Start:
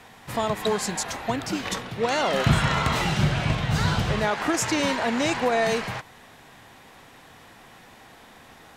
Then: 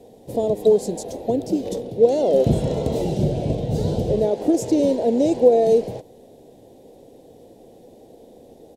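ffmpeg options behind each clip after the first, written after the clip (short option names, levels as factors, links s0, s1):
-af "firequalizer=gain_entry='entry(150,0);entry(270,7);entry(490,13);entry(1200,-28);entry(3600,-10);entry(10000,-4)':delay=0.05:min_phase=1"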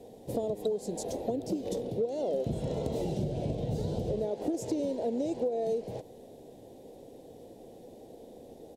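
-af "acompressor=threshold=0.0501:ratio=6,volume=0.708"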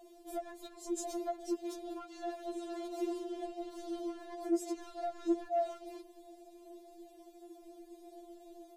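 -af "alimiter=level_in=1.06:limit=0.0631:level=0:latency=1:release=140,volume=0.944,volume=26.6,asoftclip=hard,volume=0.0376,afftfilt=real='re*4*eq(mod(b,16),0)':imag='im*4*eq(mod(b,16),0)':win_size=2048:overlap=0.75"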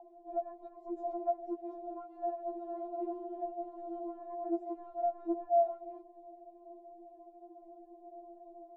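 -af "lowpass=f=810:t=q:w=9.9,volume=0.562"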